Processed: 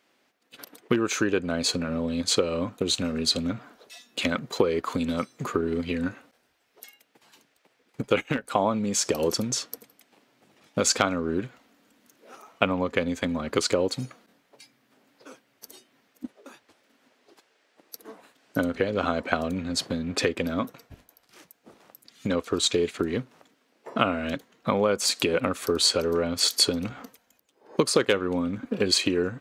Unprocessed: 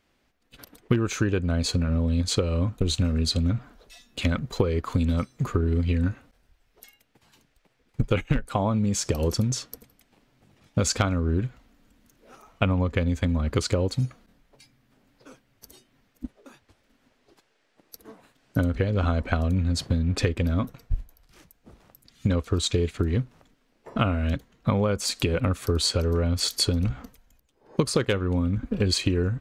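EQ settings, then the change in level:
high-pass filter 280 Hz 12 dB per octave
+3.5 dB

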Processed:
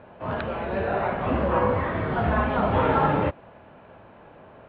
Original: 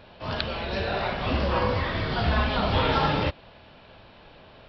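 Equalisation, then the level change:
high-pass filter 150 Hz 6 dB per octave
low-pass filter 1,800 Hz 12 dB per octave
high-frequency loss of the air 330 metres
+5.0 dB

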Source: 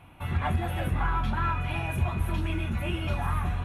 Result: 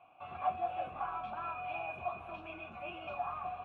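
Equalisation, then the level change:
formant filter a
low-pass filter 8,700 Hz
high-shelf EQ 6,800 Hz −5.5 dB
+3.0 dB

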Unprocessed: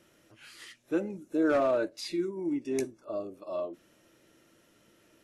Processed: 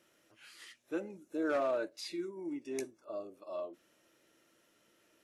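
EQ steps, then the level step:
low-shelf EQ 230 Hz −11.5 dB
−4.5 dB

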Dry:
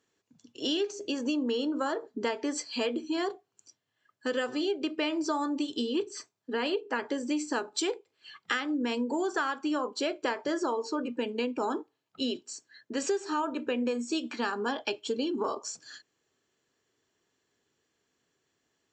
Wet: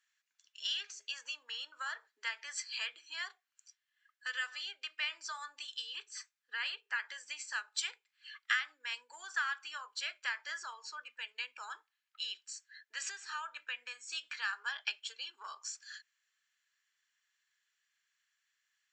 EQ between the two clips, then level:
four-pole ladder high-pass 1,400 Hz, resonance 40%
+4.0 dB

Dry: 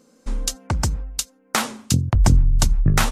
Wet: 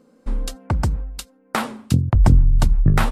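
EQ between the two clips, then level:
high-shelf EQ 2,200 Hz −9.5 dB
parametric band 6,300 Hz −7.5 dB 0.53 octaves
+2.0 dB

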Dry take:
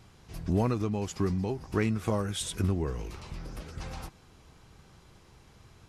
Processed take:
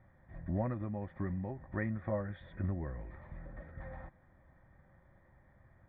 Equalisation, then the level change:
formant resonators in series e
phaser with its sweep stopped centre 1,100 Hz, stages 4
+13.5 dB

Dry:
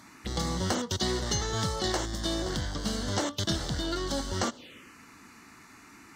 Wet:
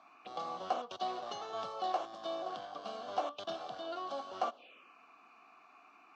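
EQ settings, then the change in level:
formant filter a
band-pass filter 120–5,800 Hz
low-shelf EQ 190 Hz −7.5 dB
+6.0 dB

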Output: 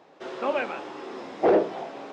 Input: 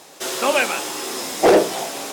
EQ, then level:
high-pass filter 66 Hz
head-to-tape spacing loss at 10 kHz 41 dB
parametric band 110 Hz −3.5 dB 1.7 octaves
−4.0 dB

